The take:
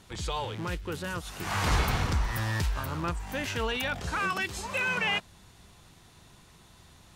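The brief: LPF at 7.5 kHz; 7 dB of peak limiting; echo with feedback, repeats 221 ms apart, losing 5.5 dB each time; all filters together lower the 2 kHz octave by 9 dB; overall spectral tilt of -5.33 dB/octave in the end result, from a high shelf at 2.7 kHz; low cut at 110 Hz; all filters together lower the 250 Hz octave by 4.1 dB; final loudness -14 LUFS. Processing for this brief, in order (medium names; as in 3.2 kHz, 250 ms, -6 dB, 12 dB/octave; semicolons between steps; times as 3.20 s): high-pass 110 Hz; low-pass 7.5 kHz; peaking EQ 250 Hz -5.5 dB; peaking EQ 2 kHz -8.5 dB; treble shelf 2.7 kHz -9 dB; peak limiter -27.5 dBFS; feedback delay 221 ms, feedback 53%, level -5.5 dB; trim +22.5 dB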